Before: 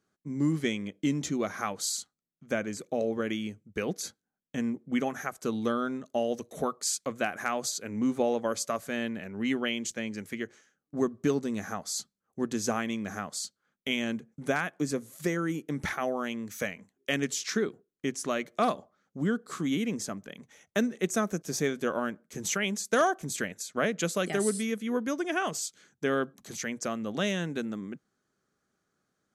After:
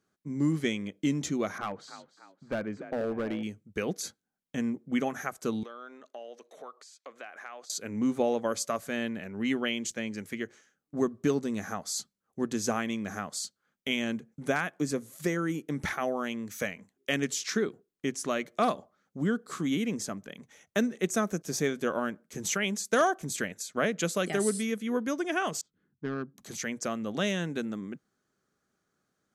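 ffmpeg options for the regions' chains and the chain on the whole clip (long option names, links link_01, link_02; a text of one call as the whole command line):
ffmpeg -i in.wav -filter_complex "[0:a]asettb=1/sr,asplit=3[link_01][link_02][link_03];[link_01]atrim=end=1.584[link_04];[link_02]atrim=start=1.58:end=3.43,asetpts=PTS-STARTPTS,afade=type=in:duration=0.004:curve=qsin,afade=type=out:start_time=1.846:duration=0.004:curve=qsin,lowpass=1900,asplit=5[link_05][link_06][link_07][link_08][link_09];[link_06]adelay=294,afreqshift=42,volume=-15dB[link_10];[link_07]adelay=588,afreqshift=84,volume=-22.5dB[link_11];[link_08]adelay=882,afreqshift=126,volume=-30.1dB[link_12];[link_09]adelay=1176,afreqshift=168,volume=-37.6dB[link_13];[link_05][link_10][link_11][link_12][link_13]amix=inputs=5:normalize=0,atrim=end_sample=81585,asoftclip=type=hard:threshold=-26.5dB[link_14];[link_03]atrim=start=3.426[link_15];[link_04][link_14]acrossfade=duration=0.004:curve1=hsin:curve2=qsin[link_16];[link_16][link_15]acrossfade=duration=0.004:curve1=qsin:curve2=hsin,asettb=1/sr,asplit=3[link_17][link_18][link_19];[link_17]atrim=end=5.634[link_20];[link_18]atrim=start=5.63:end=7.7,asetpts=PTS-STARTPTS,afade=type=in:duration=0.004:curve=qsin,afade=type=out:start_time=2.066:duration=0.004:curve=qsin,aemphasis=mode=production:type=bsi,acompressor=threshold=-42dB:ratio=3:attack=3.2:release=140:knee=1:detection=peak,highpass=390,lowpass=3000[link_21];[link_19]atrim=start=7.696[link_22];[link_20][link_21]acrossfade=duration=0.004:curve1=hsin:curve2=qsin[link_23];[link_23][link_22]acrossfade=duration=0.004:curve1=qsin:curve2=hsin,asettb=1/sr,asplit=3[link_24][link_25][link_26];[link_24]atrim=end=25.614[link_27];[link_25]atrim=start=25.61:end=26.38,asetpts=PTS-STARTPTS,afade=type=in:duration=0.004:curve=qsin,afade=type=out:start_time=0.766:duration=0.004:curve=qsin,equalizer=frequency=590:width_type=o:width=1.1:gain=-13.5,bandreject=frequency=2300:width=9.4,adynamicsmooth=sensitivity=1:basefreq=640[link_28];[link_26]atrim=start=26.376[link_29];[link_27][link_28]acrossfade=duration=0.004:curve1=hsin:curve2=qsin[link_30];[link_30][link_29]acrossfade=duration=0.004:curve1=qsin:curve2=hsin" out.wav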